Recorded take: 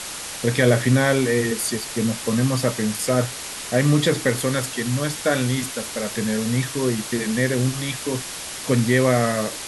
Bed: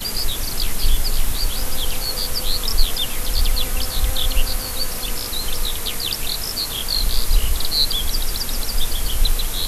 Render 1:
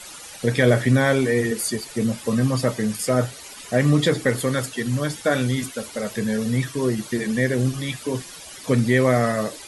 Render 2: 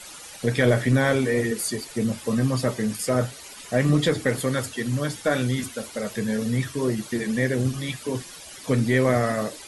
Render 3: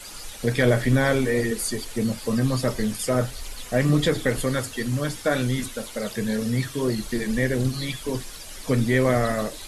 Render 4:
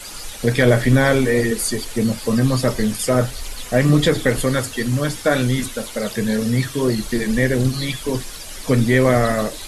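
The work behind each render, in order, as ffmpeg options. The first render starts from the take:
-af "afftdn=nr=13:nf=-33"
-filter_complex "[0:a]asplit=2[a][b];[b]aeval=exprs='clip(val(0),-1,0.106)':c=same,volume=-10dB[c];[a][c]amix=inputs=2:normalize=0,flanger=delay=0.4:depth=6.3:regen=-82:speed=2:shape=sinusoidal"
-filter_complex "[1:a]volume=-19.5dB[a];[0:a][a]amix=inputs=2:normalize=0"
-af "volume=5.5dB,alimiter=limit=-3dB:level=0:latency=1"

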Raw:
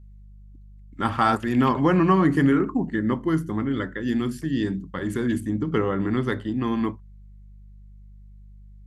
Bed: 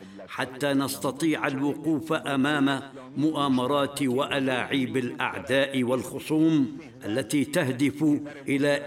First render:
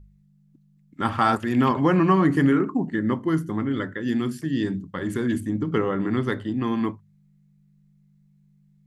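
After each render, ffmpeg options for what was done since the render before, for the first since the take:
-af "bandreject=f=50:t=h:w=4,bandreject=f=100:t=h:w=4"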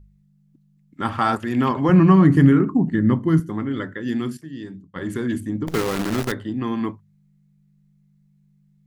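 -filter_complex "[0:a]asettb=1/sr,asplit=3[a][b][c];[a]atrim=end=1.894[d];[b]atrim=start=1.89:end=3.4,asetpts=PTS-STARTPTS,afade=t=in:d=0.004:c=qsin,afade=t=out:st=1.506:d=0.004:c=qsin,bass=f=250:g=11,treble=f=4k:g=0[e];[c]atrim=start=3.396[f];[d][e]acrossfade=d=0.004:c1=hsin:c2=qsin[g];[g][f]acrossfade=d=0.004:c1=qsin:c2=hsin,asettb=1/sr,asplit=3[h][i][j];[h]atrim=end=5.674[k];[i]atrim=start=5.67:end=6.32,asetpts=PTS-STARTPTS,afade=t=in:d=0.004:c=qsin,afade=t=out:st=0.646:d=0.004:c=qsin,acrusher=bits=5:dc=4:mix=0:aa=0.000001[l];[j]atrim=start=6.316[m];[k][l]acrossfade=d=0.004:c1=hsin:c2=qsin[n];[n][m]acrossfade=d=0.004:c1=qsin:c2=hsin,asplit=3[o][p][q];[o]atrim=end=4.372[r];[p]atrim=start=4.368:end=4.962,asetpts=PTS-STARTPTS,volume=-9.5dB[s];[q]atrim=start=4.958[t];[r][s]acrossfade=d=0.004:c1=hsin:c2=hsin[u];[u][t]acrossfade=d=0.004:c1=hsin:c2=hsin"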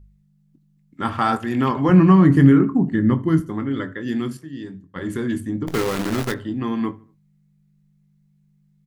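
-filter_complex "[0:a]asplit=2[a][b];[b]adelay=22,volume=-12dB[c];[a][c]amix=inputs=2:normalize=0,asplit=2[d][e];[e]adelay=76,lowpass=f=2.3k:p=1,volume=-21dB,asplit=2[f][g];[g]adelay=76,lowpass=f=2.3k:p=1,volume=0.44,asplit=2[h][i];[i]adelay=76,lowpass=f=2.3k:p=1,volume=0.44[j];[d][f][h][j]amix=inputs=4:normalize=0"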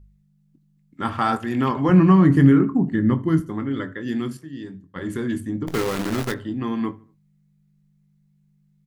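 -af "volume=-1.5dB"

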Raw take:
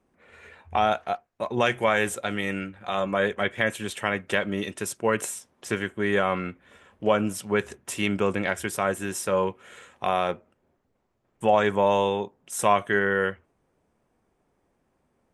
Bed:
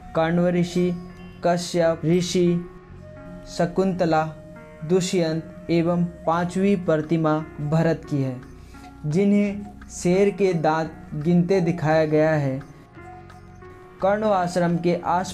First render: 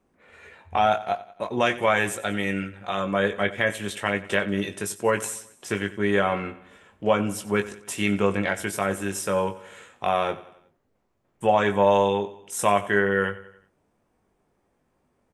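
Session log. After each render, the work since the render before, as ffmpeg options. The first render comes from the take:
-filter_complex "[0:a]asplit=2[a][b];[b]adelay=20,volume=-7dB[c];[a][c]amix=inputs=2:normalize=0,aecho=1:1:92|184|276|368:0.133|0.0667|0.0333|0.0167"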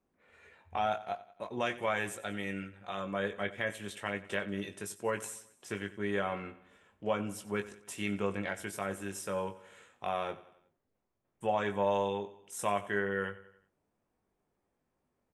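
-af "volume=-11dB"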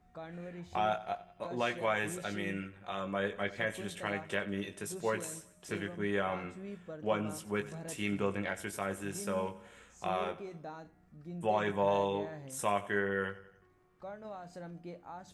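-filter_complex "[1:a]volume=-25dB[a];[0:a][a]amix=inputs=2:normalize=0"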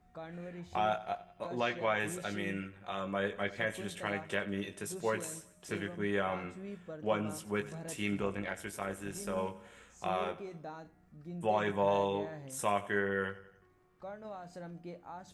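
-filter_complex "[0:a]asettb=1/sr,asplit=3[a][b][c];[a]atrim=end=1.604[d];[b]atrim=start=1.6:end=2,asetpts=PTS-STARTPTS,afade=t=in:d=0.004:c=qsin,afade=t=out:st=0.396:d=0.004:c=qsin,lowpass=f=6k:w=0.5412,lowpass=f=6k:w=1.3066[e];[c]atrim=start=1.996[f];[d][e]acrossfade=d=0.004:c1=hsin:c2=qsin[g];[g][f]acrossfade=d=0.004:c1=qsin:c2=hsin,asettb=1/sr,asplit=3[h][i][j];[h]atrim=end=8.214[k];[i]atrim=start=8.21:end=9.38,asetpts=PTS-STARTPTS,afade=t=in:d=0.004:c=qsin,afade=t=out:st=1.166:d=0.004:c=qsin,tremolo=f=160:d=0.462[l];[j]atrim=start=9.376[m];[k][l]acrossfade=d=0.004:c1=hsin:c2=qsin[n];[n][m]acrossfade=d=0.004:c1=qsin:c2=hsin"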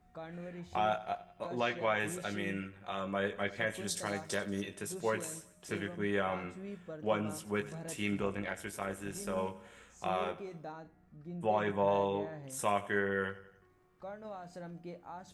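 -filter_complex "[0:a]asettb=1/sr,asplit=3[a][b][c];[a]atrim=end=3.874[d];[b]atrim=start=3.87:end=4.62,asetpts=PTS-STARTPTS,afade=t=in:d=0.004:c=qsin,afade=t=out:st=0.746:d=0.004:c=qsin,highshelf=f=3.7k:t=q:w=3:g=10[e];[c]atrim=start=4.616[f];[d][e]acrossfade=d=0.004:c1=hsin:c2=qsin[g];[g][f]acrossfade=d=0.004:c1=qsin:c2=hsin,asettb=1/sr,asplit=3[h][i][j];[h]atrim=end=10.724[k];[i]atrim=start=10.72:end=12.44,asetpts=PTS-STARTPTS,afade=t=in:d=0.004:c=qsin,afade=t=out:st=1.716:d=0.004:c=qsin,highshelf=f=3.6k:g=-7.5[l];[j]atrim=start=12.436[m];[k][l]acrossfade=d=0.004:c1=hsin:c2=qsin[n];[n][m]acrossfade=d=0.004:c1=qsin:c2=hsin"

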